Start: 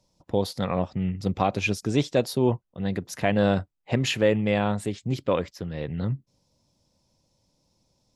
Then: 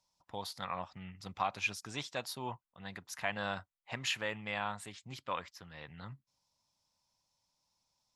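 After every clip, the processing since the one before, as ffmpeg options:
ffmpeg -i in.wav -af "lowshelf=frequency=660:width_type=q:width=1.5:gain=-13,volume=-7.5dB" out.wav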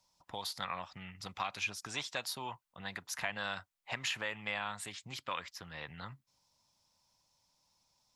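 ffmpeg -i in.wav -filter_complex "[0:a]acrossover=split=620|1400[link_01][link_02][link_03];[link_01]acompressor=threshold=-54dB:ratio=4[link_04];[link_02]acompressor=threshold=-50dB:ratio=4[link_05];[link_03]acompressor=threshold=-41dB:ratio=4[link_06];[link_04][link_05][link_06]amix=inputs=3:normalize=0,volume=5.5dB" out.wav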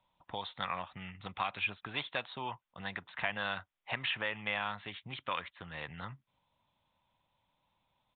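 ffmpeg -i in.wav -af "aresample=8000,aresample=44100,volume=2.5dB" out.wav

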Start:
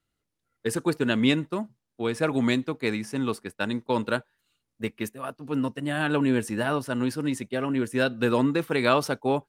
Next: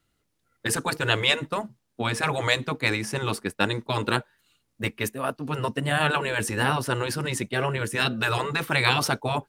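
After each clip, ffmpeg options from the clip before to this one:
ffmpeg -i in.wav -af "afftfilt=real='re*lt(hypot(re,im),0.224)':imag='im*lt(hypot(re,im),0.224)':win_size=1024:overlap=0.75,volume=7.5dB" out.wav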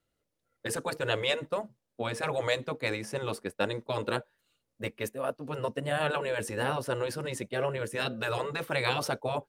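ffmpeg -i in.wav -af "equalizer=frequency=540:width_type=o:width=0.66:gain=10.5,volume=-9dB" out.wav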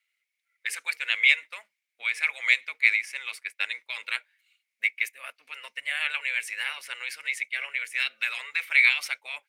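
ffmpeg -i in.wav -af "highpass=frequency=2200:width_type=q:width=10" out.wav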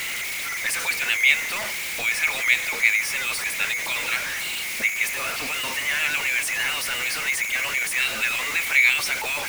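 ffmpeg -i in.wav -af "aeval=exprs='val(0)+0.5*0.075*sgn(val(0))':channel_layout=same" out.wav

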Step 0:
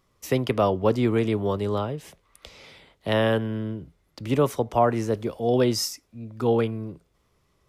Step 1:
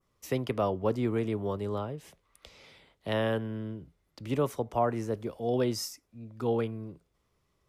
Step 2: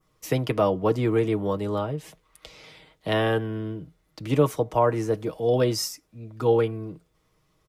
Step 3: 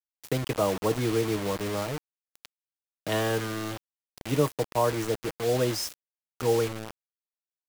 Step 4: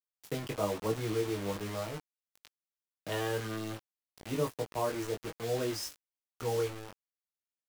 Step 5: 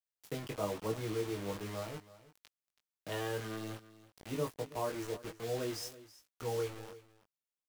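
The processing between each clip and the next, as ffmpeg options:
ffmpeg -i in.wav -af "adynamicequalizer=threshold=0.00562:dfrequency=3800:dqfactor=0.85:tfrequency=3800:tqfactor=0.85:attack=5:release=100:ratio=0.375:range=2.5:mode=cutabove:tftype=bell,volume=-7dB" out.wav
ffmpeg -i in.wav -af "aecho=1:1:6.4:0.53,volume=6dB" out.wav
ffmpeg -i in.wav -af "acrusher=bits=4:mix=0:aa=0.000001,volume=-4dB" out.wav
ffmpeg -i in.wav -af "flanger=delay=18:depth=2.6:speed=1.1,volume=-4dB" out.wav
ffmpeg -i in.wav -af "aecho=1:1:327:0.133,volume=-4dB" out.wav

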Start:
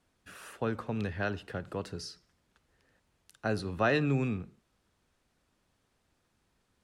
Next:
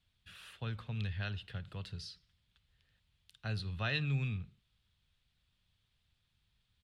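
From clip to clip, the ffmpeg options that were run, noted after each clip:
ffmpeg -i in.wav -af "firequalizer=gain_entry='entry(110,0);entry(280,-19);entry(3400,4);entry(5900,-11)':delay=0.05:min_phase=1,volume=1dB" out.wav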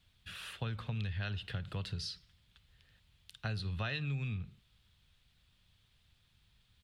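ffmpeg -i in.wav -af "acompressor=threshold=-42dB:ratio=6,volume=7.5dB" out.wav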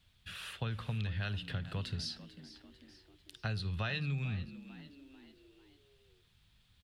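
ffmpeg -i in.wav -filter_complex "[0:a]asplit=5[link_01][link_02][link_03][link_04][link_05];[link_02]adelay=445,afreqshift=68,volume=-15.5dB[link_06];[link_03]adelay=890,afreqshift=136,volume=-22.1dB[link_07];[link_04]adelay=1335,afreqshift=204,volume=-28.6dB[link_08];[link_05]adelay=1780,afreqshift=272,volume=-35.2dB[link_09];[link_01][link_06][link_07][link_08][link_09]amix=inputs=5:normalize=0,volume=1dB" out.wav

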